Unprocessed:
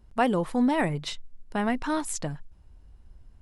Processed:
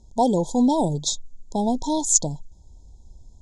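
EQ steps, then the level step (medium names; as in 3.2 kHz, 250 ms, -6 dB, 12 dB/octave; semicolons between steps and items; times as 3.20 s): brick-wall FIR band-stop 1–3.2 kHz; resonant low-pass 6.8 kHz, resonance Q 8.2; +4.5 dB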